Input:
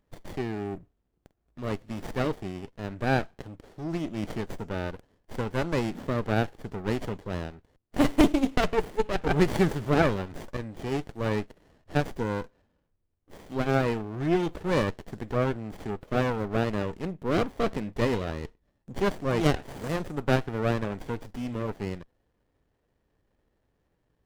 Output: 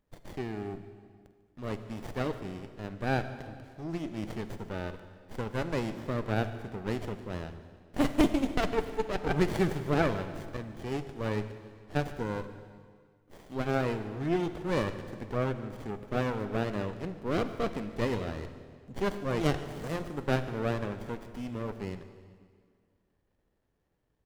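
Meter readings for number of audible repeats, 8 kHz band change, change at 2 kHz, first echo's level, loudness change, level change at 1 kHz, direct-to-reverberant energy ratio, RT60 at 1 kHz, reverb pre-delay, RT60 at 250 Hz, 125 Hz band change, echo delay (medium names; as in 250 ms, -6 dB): 4, -4.0 dB, -4.0 dB, -20.5 dB, -4.0 dB, -4.0 dB, 10.5 dB, 1.9 s, 39 ms, 2.0 s, -4.0 dB, 147 ms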